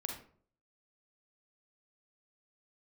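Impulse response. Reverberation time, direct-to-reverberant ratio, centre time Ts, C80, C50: 0.50 s, 2.0 dB, 28 ms, 9.5 dB, 4.5 dB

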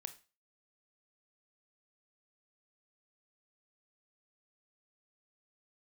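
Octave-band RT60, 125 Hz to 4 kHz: 0.35, 0.30, 0.30, 0.35, 0.30, 0.35 s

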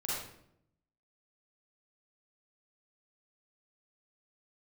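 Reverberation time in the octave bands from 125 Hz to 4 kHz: 1.1, 1.0, 0.85, 0.65, 0.60, 0.50 s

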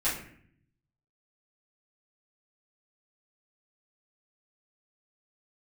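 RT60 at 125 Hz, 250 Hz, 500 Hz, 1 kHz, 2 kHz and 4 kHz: 1.2, 0.95, 0.65, 0.55, 0.65, 0.40 s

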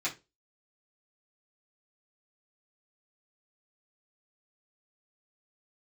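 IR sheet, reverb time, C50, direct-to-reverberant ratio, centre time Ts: 0.25 s, 14.5 dB, -8.5 dB, 15 ms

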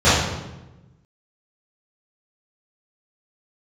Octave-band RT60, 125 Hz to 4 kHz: 1.6, 1.4, 1.1, 0.95, 0.85, 0.75 s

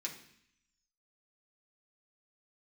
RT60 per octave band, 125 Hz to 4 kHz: 0.85, 0.85, 0.60, 0.70, 0.85, 0.85 s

